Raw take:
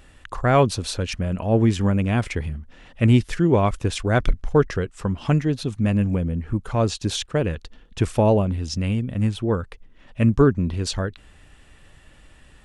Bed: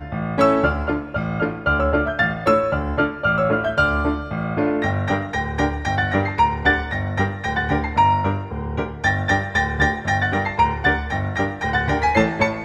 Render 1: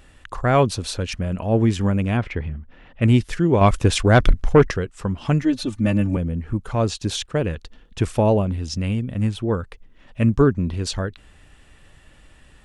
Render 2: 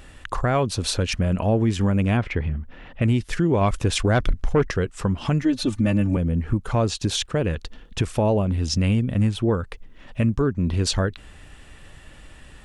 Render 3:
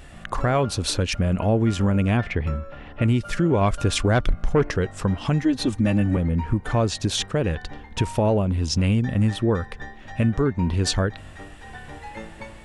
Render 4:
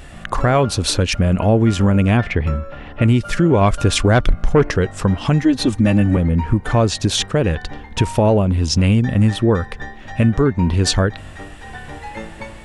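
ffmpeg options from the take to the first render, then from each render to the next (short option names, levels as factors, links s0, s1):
-filter_complex "[0:a]asettb=1/sr,asplit=3[s0][s1][s2];[s0]atrim=end=2.174[s3];[s1]atrim=start=2.17:end=3.02,asetpts=PTS-STARTPTS,afade=t=in:d=0.004:c=qsin,afade=t=out:st=0.846:d=0.004:c=qsin,lowpass=2800[s4];[s2]atrim=start=3.016[s5];[s3][s4]acrossfade=d=0.004:c1=hsin:c2=qsin[s6];[s6][s5]acrossfade=d=0.004:c1=qsin:c2=hsin,asettb=1/sr,asplit=3[s7][s8][s9];[s7]atrim=end=3.614[s10];[s8]atrim=start=3.61:end=4.72,asetpts=PTS-STARTPTS,afade=t=in:d=0.004:c=qsin,afade=t=out:st=1.106:d=0.004:c=qsin,aeval=exprs='0.531*sin(PI/2*1.41*val(0)/0.531)':c=same[s11];[s9]atrim=start=4.716[s12];[s10][s11]acrossfade=d=0.004:c1=hsin:c2=qsin[s13];[s13][s12]acrossfade=d=0.004:c1=qsin:c2=hsin,asettb=1/sr,asplit=3[s14][s15][s16];[s14]atrim=end=5.424[s17];[s15]atrim=start=5.42:end=6.17,asetpts=PTS-STARTPTS,afade=t=in:d=0.004:c=qsin,afade=t=out:st=0.746:d=0.004:c=qsin,aecho=1:1:3.4:0.94,atrim=end_sample=33075[s18];[s16]atrim=start=6.166[s19];[s17][s18]acrossfade=d=0.004:c1=hsin:c2=qsin[s20];[s20][s19]acrossfade=d=0.004:c1=qsin:c2=hsin"
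-filter_complex "[0:a]asplit=2[s0][s1];[s1]acompressor=threshold=0.0562:ratio=6,volume=0.794[s2];[s0][s2]amix=inputs=2:normalize=0,alimiter=limit=0.251:level=0:latency=1:release=256"
-filter_complex "[1:a]volume=0.0944[s0];[0:a][s0]amix=inputs=2:normalize=0"
-af "volume=2"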